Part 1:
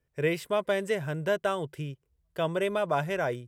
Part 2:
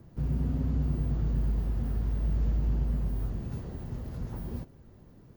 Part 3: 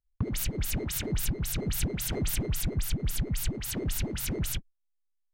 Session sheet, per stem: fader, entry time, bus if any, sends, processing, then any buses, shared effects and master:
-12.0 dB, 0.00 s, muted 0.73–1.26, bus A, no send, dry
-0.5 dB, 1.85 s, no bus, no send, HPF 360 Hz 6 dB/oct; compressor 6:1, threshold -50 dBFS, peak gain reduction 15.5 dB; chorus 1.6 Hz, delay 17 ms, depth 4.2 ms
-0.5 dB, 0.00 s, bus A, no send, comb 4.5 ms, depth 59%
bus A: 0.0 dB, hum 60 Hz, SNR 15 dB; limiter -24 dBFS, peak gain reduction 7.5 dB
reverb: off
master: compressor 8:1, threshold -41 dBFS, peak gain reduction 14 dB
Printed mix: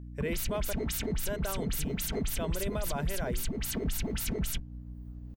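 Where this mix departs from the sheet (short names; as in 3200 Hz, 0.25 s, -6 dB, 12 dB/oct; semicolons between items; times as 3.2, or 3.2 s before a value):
stem 1 -12.0 dB -> -3.5 dB; stem 2: missing HPF 360 Hz 6 dB/oct; master: missing compressor 8:1, threshold -41 dBFS, peak gain reduction 14 dB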